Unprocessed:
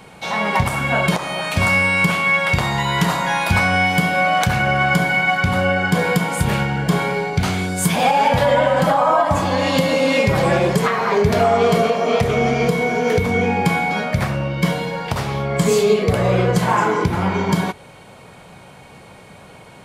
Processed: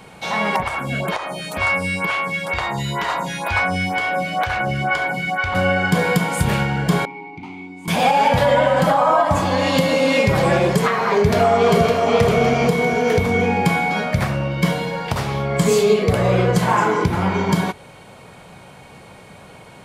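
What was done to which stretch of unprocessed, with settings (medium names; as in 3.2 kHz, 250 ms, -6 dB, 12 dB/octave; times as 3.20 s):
0.56–5.55 s: lamp-driven phase shifter 2.1 Hz
7.05–7.88 s: vowel filter u
11.10–12.12 s: echo throw 560 ms, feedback 45%, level -6 dB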